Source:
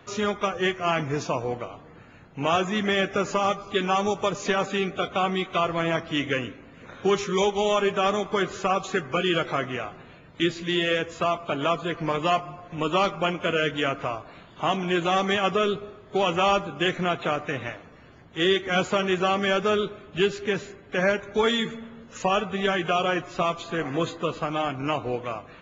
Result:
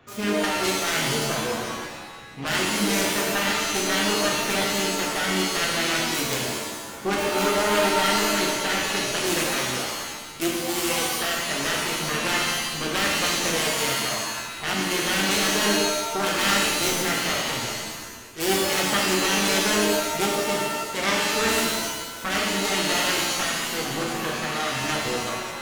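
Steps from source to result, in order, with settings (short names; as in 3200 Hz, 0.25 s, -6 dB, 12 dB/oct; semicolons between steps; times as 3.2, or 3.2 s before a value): self-modulated delay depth 0.67 ms; shimmer reverb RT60 1.2 s, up +7 st, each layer -2 dB, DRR -2 dB; gain -4.5 dB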